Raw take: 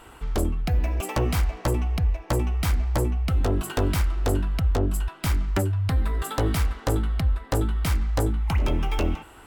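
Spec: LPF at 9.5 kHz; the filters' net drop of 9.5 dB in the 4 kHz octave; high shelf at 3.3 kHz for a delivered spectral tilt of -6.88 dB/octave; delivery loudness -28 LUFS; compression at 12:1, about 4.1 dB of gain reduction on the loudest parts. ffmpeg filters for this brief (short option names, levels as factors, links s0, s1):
-af "lowpass=9500,highshelf=f=3300:g=-7.5,equalizer=f=4000:t=o:g=-7.5,acompressor=threshold=0.0794:ratio=12,volume=1.12"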